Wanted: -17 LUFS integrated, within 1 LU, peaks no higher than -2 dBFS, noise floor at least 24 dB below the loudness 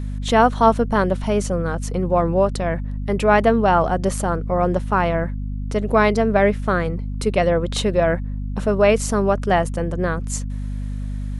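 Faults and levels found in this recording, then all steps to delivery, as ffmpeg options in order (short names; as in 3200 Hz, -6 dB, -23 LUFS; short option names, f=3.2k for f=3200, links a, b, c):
hum 50 Hz; harmonics up to 250 Hz; hum level -24 dBFS; loudness -20.0 LUFS; peak -2.5 dBFS; loudness target -17.0 LUFS
-> -af "bandreject=f=50:t=h:w=4,bandreject=f=100:t=h:w=4,bandreject=f=150:t=h:w=4,bandreject=f=200:t=h:w=4,bandreject=f=250:t=h:w=4"
-af "volume=3dB,alimiter=limit=-2dB:level=0:latency=1"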